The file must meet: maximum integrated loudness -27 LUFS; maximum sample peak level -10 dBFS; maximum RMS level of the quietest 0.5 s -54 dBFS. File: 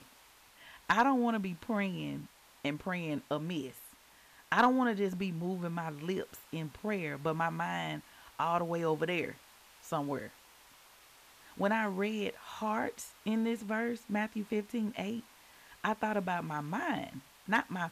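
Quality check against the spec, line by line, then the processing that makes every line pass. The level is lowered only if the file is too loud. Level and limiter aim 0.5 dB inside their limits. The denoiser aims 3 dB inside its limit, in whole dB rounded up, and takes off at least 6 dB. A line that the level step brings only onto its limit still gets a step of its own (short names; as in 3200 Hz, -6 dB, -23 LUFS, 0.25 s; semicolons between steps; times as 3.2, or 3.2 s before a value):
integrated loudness -34.5 LUFS: OK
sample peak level -15.0 dBFS: OK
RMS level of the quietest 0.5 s -60 dBFS: OK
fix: none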